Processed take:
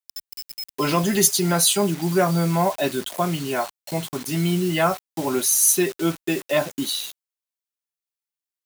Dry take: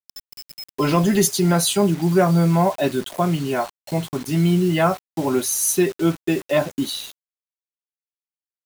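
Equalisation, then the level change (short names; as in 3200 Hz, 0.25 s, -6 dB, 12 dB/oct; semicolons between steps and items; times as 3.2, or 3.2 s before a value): tilt +1.5 dB/oct; -1.0 dB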